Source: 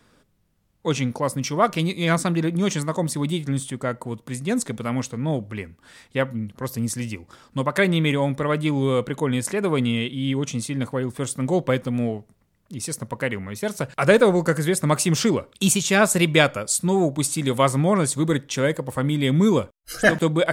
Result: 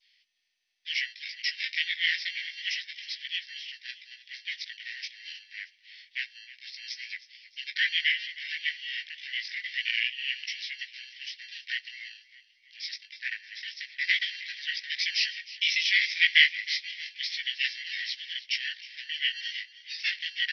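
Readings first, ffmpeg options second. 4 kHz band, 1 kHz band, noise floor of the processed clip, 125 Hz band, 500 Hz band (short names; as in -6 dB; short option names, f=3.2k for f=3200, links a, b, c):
+3.0 dB, under -40 dB, -65 dBFS, under -40 dB, under -40 dB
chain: -filter_complex "[0:a]adynamicequalizer=threshold=0.02:dfrequency=2400:dqfactor=1.5:tfrequency=2400:tqfactor=1.5:attack=5:release=100:ratio=0.375:range=1.5:mode=boostabove:tftype=bell,flanger=delay=16:depth=2.8:speed=0.28,afreqshift=-360,asplit=2[a][b];[b]acrusher=samples=30:mix=1:aa=0.000001,volume=-6dB[c];[a][c]amix=inputs=2:normalize=0,asuperpass=centerf=3200:order=20:qfactor=0.89,asplit=5[d][e][f][g][h];[e]adelay=313,afreqshift=33,volume=-17dB[i];[f]adelay=626,afreqshift=66,volume=-23.6dB[j];[g]adelay=939,afreqshift=99,volume=-30.1dB[k];[h]adelay=1252,afreqshift=132,volume=-36.7dB[l];[d][i][j][k][l]amix=inputs=5:normalize=0,volume=4.5dB" -ar 24000 -c:a mp2 -b:a 48k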